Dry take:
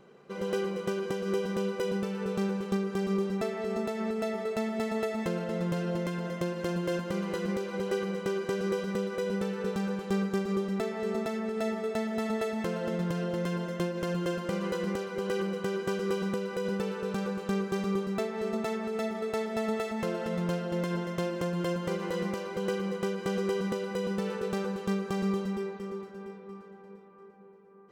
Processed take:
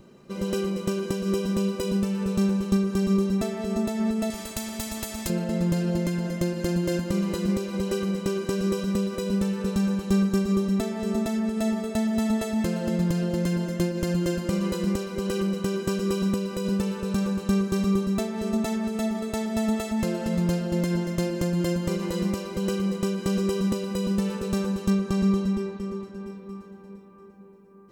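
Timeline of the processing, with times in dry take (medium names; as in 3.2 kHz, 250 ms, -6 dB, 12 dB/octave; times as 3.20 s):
4.30–5.30 s: spectrum-flattening compressor 2:1
24.90–26.27 s: treble shelf 8.9 kHz -9.5 dB
whole clip: tone controls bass +15 dB, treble +10 dB; band-stop 1.5 kHz, Q 20; comb 3.3 ms, depth 45%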